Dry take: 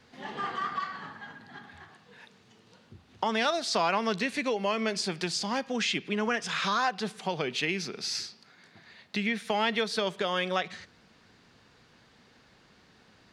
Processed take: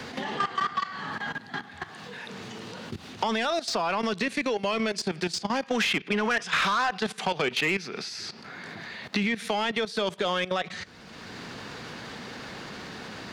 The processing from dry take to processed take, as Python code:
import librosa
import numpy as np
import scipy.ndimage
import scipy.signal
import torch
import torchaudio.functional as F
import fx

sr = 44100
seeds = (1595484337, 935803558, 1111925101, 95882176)

y = fx.level_steps(x, sr, step_db=16)
y = fx.peak_eq(y, sr, hz=1700.0, db=6.0, octaves=2.9, at=(5.63, 8.09))
y = 10.0 ** (-24.0 / 20.0) * np.tanh(y / 10.0 ** (-24.0 / 20.0))
y = fx.band_squash(y, sr, depth_pct=70)
y = F.gain(torch.from_numpy(y), 7.0).numpy()